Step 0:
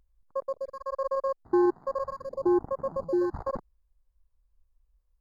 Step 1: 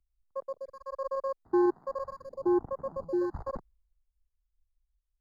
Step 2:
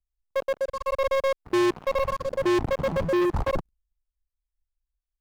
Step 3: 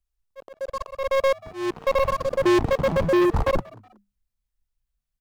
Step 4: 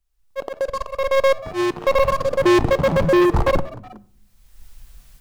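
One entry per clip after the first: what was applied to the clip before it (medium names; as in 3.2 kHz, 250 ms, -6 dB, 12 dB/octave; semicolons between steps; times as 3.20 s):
three bands expanded up and down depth 40%; trim -4 dB
tone controls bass +6 dB, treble -1 dB; waveshaping leveller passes 5; trim -2 dB
slow attack 344 ms; frequency-shifting echo 185 ms, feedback 34%, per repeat +100 Hz, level -23.5 dB; trim +4 dB
recorder AGC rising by 28 dB/s; simulated room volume 930 m³, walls furnished, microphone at 0.36 m; trim +4.5 dB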